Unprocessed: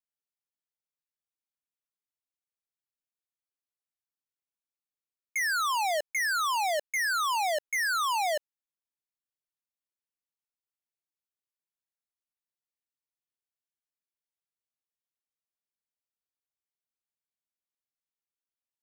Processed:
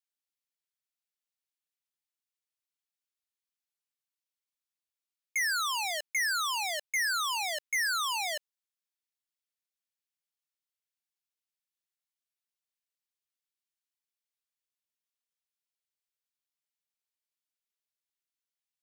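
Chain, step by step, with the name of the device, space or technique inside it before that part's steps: filter by subtraction (in parallel: LPF 3000 Hz 12 dB/oct + phase invert)

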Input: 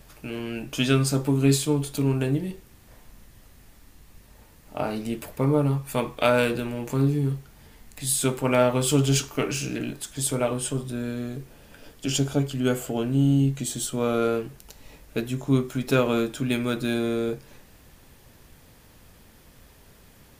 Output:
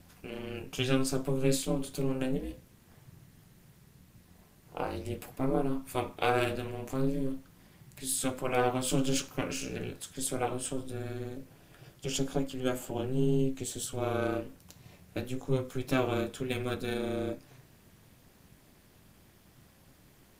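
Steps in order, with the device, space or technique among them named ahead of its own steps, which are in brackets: alien voice (ring modulator 130 Hz; flange 0.24 Hz, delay 3.5 ms, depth 8.6 ms, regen -70%)

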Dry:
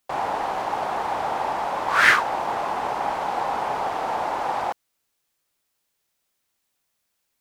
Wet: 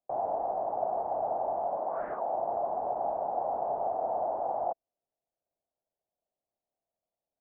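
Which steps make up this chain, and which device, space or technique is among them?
1.77–2.35 HPF 150 Hz 24 dB/oct; overdriven synthesiser ladder filter (soft clip -12.5 dBFS, distortion -15 dB; ladder low-pass 730 Hz, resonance 70%)

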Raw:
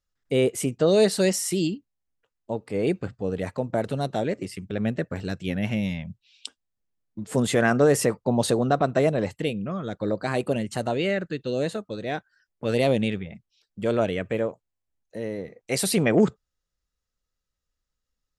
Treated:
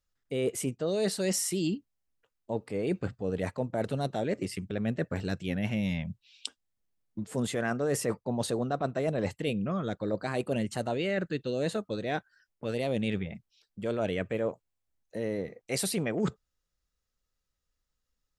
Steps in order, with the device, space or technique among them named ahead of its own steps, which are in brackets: compression on the reversed sound (reverse; compressor 10:1, threshold -26 dBFS, peak gain reduction 13 dB; reverse)

